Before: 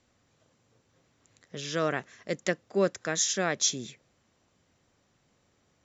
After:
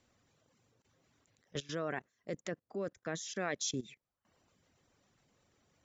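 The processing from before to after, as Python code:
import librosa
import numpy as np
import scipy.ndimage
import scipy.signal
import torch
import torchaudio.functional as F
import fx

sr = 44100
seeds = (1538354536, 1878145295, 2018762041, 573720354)

y = fx.dereverb_blind(x, sr, rt60_s=0.71)
y = fx.level_steps(y, sr, step_db=19)
y = fx.high_shelf(y, sr, hz=2100.0, db=-10.0, at=(1.62, 3.36))
y = y * 10.0 ** (2.5 / 20.0)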